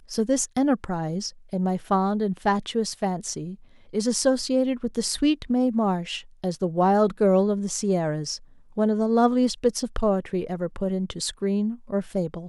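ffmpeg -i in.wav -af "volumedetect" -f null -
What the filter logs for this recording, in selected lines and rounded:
mean_volume: -24.4 dB
max_volume: -8.0 dB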